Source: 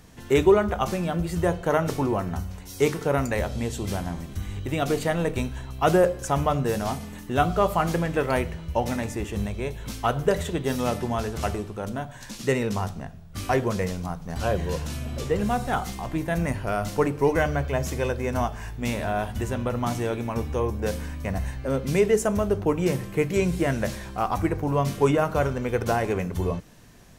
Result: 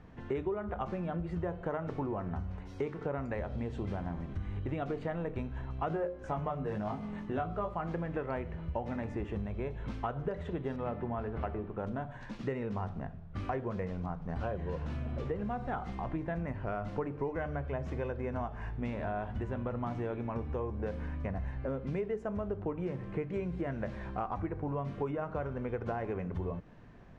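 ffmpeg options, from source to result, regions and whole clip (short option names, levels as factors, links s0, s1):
-filter_complex "[0:a]asettb=1/sr,asplit=3[s0][s1][s2];[s0]atrim=end=5.884[s3];[s1]atrim=start=5.88:end=7.74,asetpts=PTS-STARTPTS,afade=t=in:d=0.004:c=qsin,afade=t=out:st=1.856:d=0.004:c=qsin,bandreject=f=60:t=h:w=6,bandreject=f=120:t=h:w=6,bandreject=f=180:t=h:w=6,bandreject=f=240:t=h:w=6,bandreject=f=300:t=h:w=6,bandreject=f=360:t=h:w=6,bandreject=f=420:t=h:w=6,asplit=2[s4][s5];[s5]adelay=19,volume=0.708[s6];[s4][s6]amix=inputs=2:normalize=0,atrim=end_sample=82026[s7];[s2]atrim=start=7.736[s8];[s3][s7]acrossfade=d=0.004:c1=hsin:c2=qsin[s9];[s9][s8]acrossfade=d=0.004:c1=qsin:c2=hsin,asettb=1/sr,asplit=3[s10][s11][s12];[s10]atrim=end=10.764[s13];[s11]atrim=start=10.76:end=11.79,asetpts=PTS-STARTPTS,afade=t=in:d=0.004:c=qsin,afade=t=out:st=1.026:d=0.004:c=qsin,lowpass=2700,bandreject=f=50:t=h:w=6,bandreject=f=100:t=h:w=6,bandreject=f=150:t=h:w=6,bandreject=f=200:t=h:w=6,bandreject=f=250:t=h:w=6,bandreject=f=300:t=h:w=6,bandreject=f=350:t=h:w=6[s14];[s12]atrim=start=11.786[s15];[s13][s14]acrossfade=d=0.004:c1=hsin:c2=qsin[s16];[s16][s15]acrossfade=d=0.004:c1=qsin:c2=hsin,lowpass=1800,acompressor=threshold=0.0316:ratio=6,volume=0.75"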